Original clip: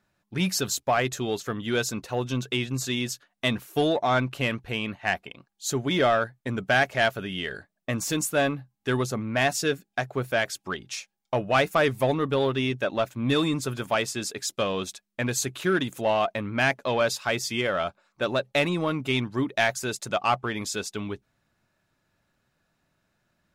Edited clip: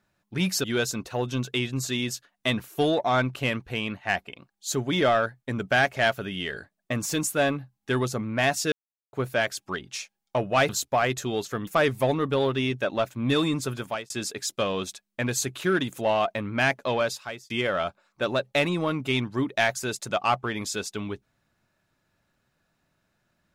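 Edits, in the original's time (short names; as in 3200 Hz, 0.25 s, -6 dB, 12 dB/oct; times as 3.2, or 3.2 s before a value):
0.64–1.62 move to 11.67
9.7–10.11 mute
13.63–14.1 fade out equal-power
16.91–17.5 fade out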